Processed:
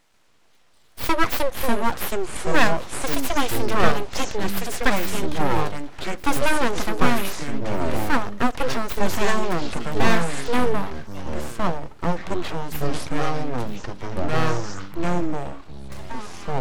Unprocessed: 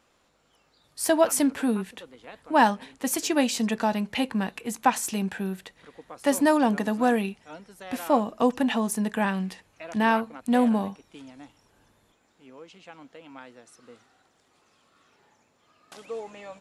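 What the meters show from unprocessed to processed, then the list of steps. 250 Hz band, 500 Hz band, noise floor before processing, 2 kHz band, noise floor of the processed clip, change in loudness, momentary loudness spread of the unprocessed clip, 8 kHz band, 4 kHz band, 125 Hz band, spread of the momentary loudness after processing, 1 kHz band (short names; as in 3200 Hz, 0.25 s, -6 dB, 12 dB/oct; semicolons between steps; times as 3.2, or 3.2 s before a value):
-1.0 dB, +2.5 dB, -67 dBFS, +6.0 dB, -54 dBFS, +0.5 dB, 16 LU, 0.0 dB, +6.0 dB, +10.0 dB, 11 LU, +2.5 dB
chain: full-wave rectifier; echoes that change speed 0.141 s, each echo -6 st, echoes 3; gain +4 dB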